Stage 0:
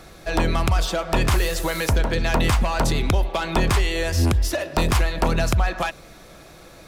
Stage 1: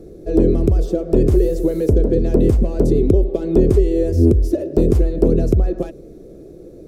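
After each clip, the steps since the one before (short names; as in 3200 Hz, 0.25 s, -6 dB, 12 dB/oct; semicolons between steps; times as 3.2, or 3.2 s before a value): EQ curve 170 Hz 0 dB, 420 Hz +11 dB, 920 Hz -24 dB, 3200 Hz -25 dB, 6000 Hz -18 dB, 13000 Hz -16 dB; gain +4.5 dB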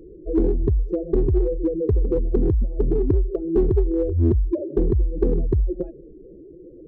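spectral contrast raised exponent 2.1; in parallel at -8.5 dB: hard clip -12 dBFS, distortion -12 dB; on the sum: gain -7 dB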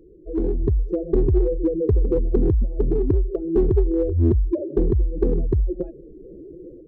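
AGC gain up to 11 dB; gain -6.5 dB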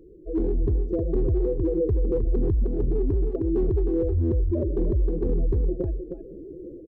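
on a send: echo 0.311 s -8.5 dB; on the sum: limiter -16.5 dBFS, peak gain reduction 9 dB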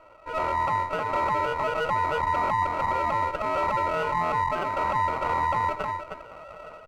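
ring modulator 960 Hz; running maximum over 9 samples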